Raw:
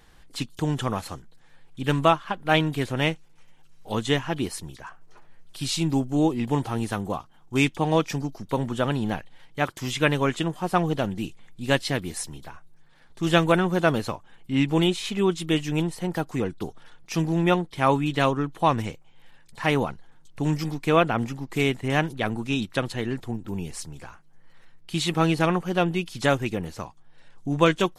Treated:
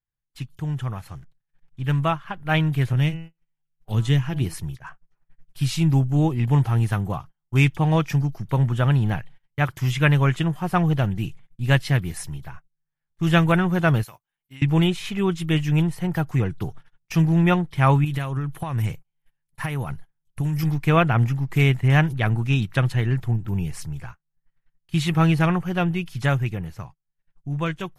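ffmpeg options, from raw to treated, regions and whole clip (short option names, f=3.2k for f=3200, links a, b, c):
-filter_complex "[0:a]asettb=1/sr,asplit=3[a][b][c];[a]atrim=end=1.104[d];[b]atrim=start=1.1:end=1.84,asetpts=PTS-STARTPTS,afade=t=in:d=0.004:c=qsin,afade=t=out:st=0.736:d=0.004:c=qsin,aeval=exprs='val(0)+0.5*0.00562*sgn(val(0))':c=same,lowpass=9.7k[e];[c]atrim=start=1.836[f];[d][e]acrossfade=d=0.004:c1=hsin:c2=qsin[g];[g][f]acrossfade=d=0.004:c1=qsin:c2=hsin,asettb=1/sr,asplit=3[h][i][j];[h]atrim=end=2.934[k];[i]atrim=start=2.93:end=4.54,asetpts=PTS-STARTPTS,afade=t=in:d=0.004:c=qsin,afade=t=out:st=1.606:d=0.004:c=qsin,bandreject=f=163.6:t=h:w=4,bandreject=f=327.2:t=h:w=4,bandreject=f=490.8:t=h:w=4,bandreject=f=654.4:t=h:w=4,bandreject=f=818:t=h:w=4,bandreject=f=981.6:t=h:w=4,bandreject=f=1.1452k:t=h:w=4,bandreject=f=1.3088k:t=h:w=4,bandreject=f=1.4724k:t=h:w=4,bandreject=f=1.636k:t=h:w=4,bandreject=f=1.7996k:t=h:w=4,bandreject=f=1.9632k:t=h:w=4,bandreject=f=2.1268k:t=h:w=4,bandreject=f=2.2904k:t=h:w=4,bandreject=f=2.454k:t=h:w=4,bandreject=f=2.6176k:t=h:w=4,bandreject=f=2.7812k:t=h:w=4,bandreject=f=2.9448k:t=h:w=4,acrossover=split=410|3000[l][m][n];[m]acompressor=threshold=-42dB:ratio=2:attack=3.2:release=140:knee=2.83:detection=peak[o];[l][o][n]amix=inputs=3:normalize=0[p];[j]atrim=start=4.536[q];[k][p]acrossfade=d=0.004:c1=hsin:c2=qsin[r];[r][q]acrossfade=d=0.004:c1=qsin:c2=hsin,asettb=1/sr,asplit=3[s][t][u];[s]atrim=end=14.034[v];[t]atrim=start=14.03:end=14.62,asetpts=PTS-STARTPTS,afade=t=in:d=0.004:c=qsin,afade=t=out:st=0.586:d=0.004:c=qsin,aemphasis=mode=production:type=riaa,acompressor=threshold=-38dB:ratio=12:attack=3.2:release=140:knee=1:detection=peak[w];[u]atrim=start=14.616[x];[v][w]acrossfade=d=0.004:c1=hsin:c2=qsin[y];[y][x]acrossfade=d=0.004:c1=qsin:c2=hsin,asettb=1/sr,asplit=3[z][aa][ab];[z]atrim=end=18.044[ac];[aa]atrim=start=18.04:end=20.63,asetpts=PTS-STARTPTS,afade=t=in:d=0.004:c=qsin,afade=t=out:st=2.586:d=0.004:c=qsin,equalizer=f=11k:w=1.4:g=14,acompressor=threshold=-27dB:ratio=12:attack=3.2:release=140:knee=1:detection=peak[ad];[ab]atrim=start=20.626[ae];[ac][ad]acrossfade=d=0.004:c1=hsin:c2=qsin[af];[af][ae]acrossfade=d=0.004:c1=qsin:c2=hsin,agate=range=-33dB:threshold=-41dB:ratio=16:detection=peak,equalizer=f=125:t=o:w=1:g=9,equalizer=f=250:t=o:w=1:g=-9,equalizer=f=500:t=o:w=1:g=-7,equalizer=f=1k:t=o:w=1:g=-4,equalizer=f=4k:t=o:w=1:g=-8,equalizer=f=8k:t=o:w=1:g=-9,dynaudnorm=f=450:g=11:m=11.5dB,volume=-3dB"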